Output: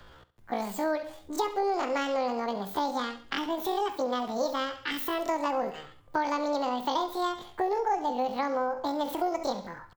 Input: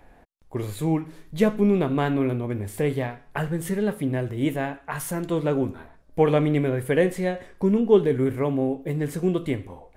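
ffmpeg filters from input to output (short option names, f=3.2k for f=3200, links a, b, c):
-filter_complex "[0:a]asplit=2[a][b];[b]alimiter=limit=-14.5dB:level=0:latency=1:release=322,volume=0dB[c];[a][c]amix=inputs=2:normalize=0,asetrate=85689,aresample=44100,atempo=0.514651,aecho=1:1:68|136|204:0.168|0.052|0.0161,acrossover=split=180|490[d][e][f];[d]acompressor=threshold=-47dB:ratio=4[g];[e]acompressor=threshold=-32dB:ratio=4[h];[f]acompressor=threshold=-23dB:ratio=4[i];[g][h][i]amix=inputs=3:normalize=0,volume=-5dB"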